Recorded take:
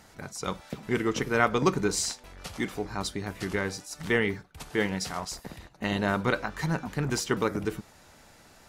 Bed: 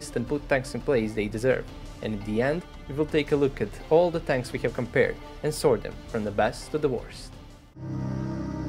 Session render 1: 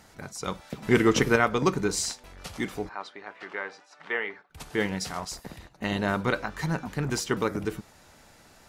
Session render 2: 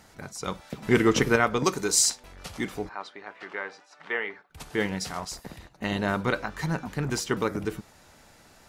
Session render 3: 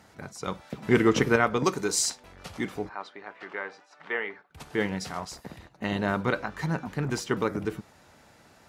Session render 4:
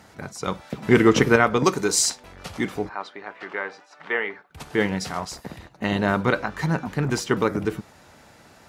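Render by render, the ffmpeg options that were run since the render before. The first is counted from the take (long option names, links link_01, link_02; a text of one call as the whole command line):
ffmpeg -i in.wav -filter_complex "[0:a]asettb=1/sr,asplit=3[link_01][link_02][link_03];[link_01]atrim=end=0.824[link_04];[link_02]atrim=start=0.82:end=1.36,asetpts=PTS-STARTPTS,afade=type=in:duration=0.004:curve=qsin,afade=type=out:start_time=0.536:duration=0.004:curve=qsin,acontrast=79[link_05];[link_03]atrim=start=1.356[link_06];[link_04][link_05]acrossfade=duration=0.004:curve1=hsin:curve2=qsin[link_07];[link_07][link_06]acrossfade=duration=0.004:curve1=qsin:curve2=hsin,asplit=3[link_08][link_09][link_10];[link_08]afade=type=out:start_time=2.88:duration=0.02[link_11];[link_09]highpass=640,lowpass=2300,afade=type=in:start_time=2.88:duration=0.02,afade=type=out:start_time=4.49:duration=0.02[link_12];[link_10]afade=type=in:start_time=4.49:duration=0.02[link_13];[link_11][link_12][link_13]amix=inputs=3:normalize=0" out.wav
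ffmpeg -i in.wav -filter_complex "[0:a]asettb=1/sr,asplit=3[link_01][link_02][link_03];[link_01]atrim=end=1.644[link_04];[link_02]atrim=start=1.64:end=2.1,asetpts=PTS-STARTPTS,afade=type=in:duration=0.004:curve=qsin,afade=type=out:start_time=0.456:duration=0.004:curve=qsin,bass=frequency=250:gain=-8,treble=frequency=4000:gain=10[link_05];[link_03]atrim=start=2.096[link_06];[link_04][link_05]acrossfade=duration=0.004:curve1=hsin:curve2=qsin[link_07];[link_07][link_06]acrossfade=duration=0.004:curve1=qsin:curve2=hsin" out.wav
ffmpeg -i in.wav -af "highpass=65,highshelf=frequency=3900:gain=-6.5" out.wav
ffmpeg -i in.wav -af "volume=5.5dB,alimiter=limit=-3dB:level=0:latency=1" out.wav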